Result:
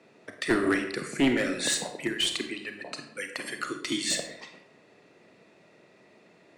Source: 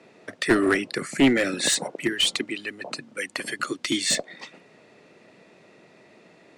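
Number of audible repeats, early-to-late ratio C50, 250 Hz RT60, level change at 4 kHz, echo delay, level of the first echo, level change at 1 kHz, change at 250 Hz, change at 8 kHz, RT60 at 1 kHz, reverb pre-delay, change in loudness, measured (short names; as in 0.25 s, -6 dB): none, 7.5 dB, 0.85 s, -4.5 dB, none, none, -4.0 dB, -4.5 dB, -4.5 dB, 0.70 s, 29 ms, -4.5 dB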